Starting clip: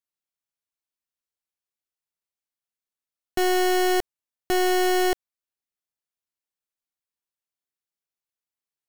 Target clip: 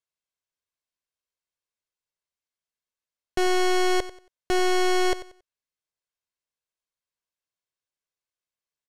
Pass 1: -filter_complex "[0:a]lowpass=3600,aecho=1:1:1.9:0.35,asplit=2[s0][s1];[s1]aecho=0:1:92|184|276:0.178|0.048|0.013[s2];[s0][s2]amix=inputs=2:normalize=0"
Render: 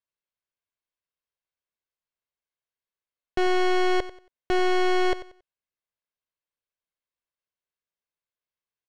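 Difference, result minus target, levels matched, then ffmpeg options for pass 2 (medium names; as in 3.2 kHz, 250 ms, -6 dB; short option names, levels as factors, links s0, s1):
8 kHz band -10.0 dB
-filter_complex "[0:a]lowpass=8000,aecho=1:1:1.9:0.35,asplit=2[s0][s1];[s1]aecho=0:1:92|184|276:0.178|0.048|0.013[s2];[s0][s2]amix=inputs=2:normalize=0"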